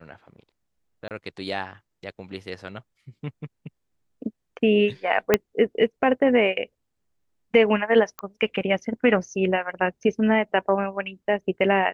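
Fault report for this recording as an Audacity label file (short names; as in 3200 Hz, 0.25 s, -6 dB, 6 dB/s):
1.080000	1.110000	gap 28 ms
5.340000	5.340000	pop -3 dBFS
8.190000	8.190000	pop -17 dBFS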